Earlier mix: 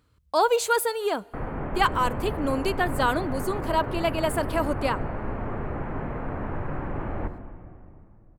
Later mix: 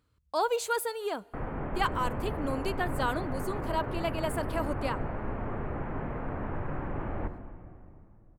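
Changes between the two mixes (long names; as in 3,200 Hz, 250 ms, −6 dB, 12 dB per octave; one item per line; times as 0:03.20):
speech −7.0 dB
background −3.5 dB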